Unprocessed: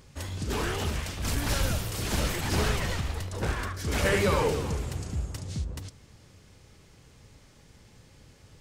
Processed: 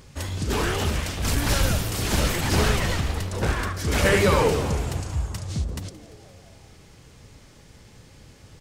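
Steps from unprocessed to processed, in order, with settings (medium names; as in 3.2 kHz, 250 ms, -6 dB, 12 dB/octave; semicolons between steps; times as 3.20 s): 5.01–5.55 s: Chebyshev band-stop 130–720 Hz; on a send: frequency-shifting echo 172 ms, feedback 65%, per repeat +120 Hz, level -19.5 dB; on the sum: trim +5.5 dB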